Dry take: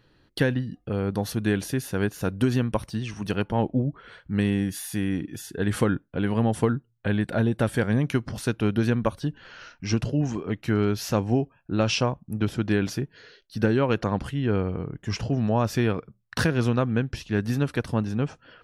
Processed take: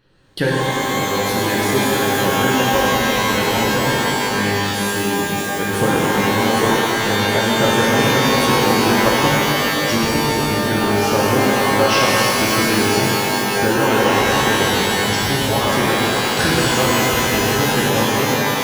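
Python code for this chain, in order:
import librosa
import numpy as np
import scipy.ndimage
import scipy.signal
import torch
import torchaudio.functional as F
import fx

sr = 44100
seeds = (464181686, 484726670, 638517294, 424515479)

y = fx.hpss(x, sr, part='percussive', gain_db=9)
y = fx.rev_shimmer(y, sr, seeds[0], rt60_s=3.5, semitones=12, shimmer_db=-2, drr_db=-6.0)
y = y * librosa.db_to_amplitude(-5.5)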